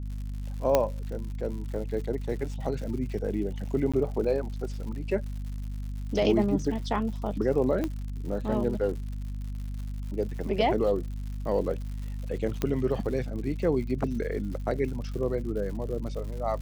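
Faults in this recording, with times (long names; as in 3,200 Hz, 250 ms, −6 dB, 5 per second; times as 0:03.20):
surface crackle 150 per second −38 dBFS
mains hum 50 Hz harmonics 5 −34 dBFS
0:00.75: click −8 dBFS
0:03.92–0:03.94: drop-out 16 ms
0:07.84: click −17 dBFS
0:12.62: click −14 dBFS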